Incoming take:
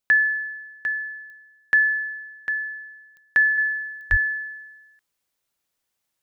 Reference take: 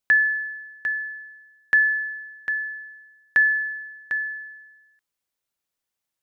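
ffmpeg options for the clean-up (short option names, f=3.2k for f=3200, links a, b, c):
-filter_complex "[0:a]adeclick=t=4,asplit=3[a][b][c];[a]afade=t=out:st=4.1:d=0.02[d];[b]highpass=f=140:w=0.5412,highpass=f=140:w=1.3066,afade=t=in:st=4.1:d=0.02,afade=t=out:st=4.22:d=0.02[e];[c]afade=t=in:st=4.22:d=0.02[f];[d][e][f]amix=inputs=3:normalize=0,asetnsamples=n=441:p=0,asendcmd='3.58 volume volume -5.5dB',volume=0dB"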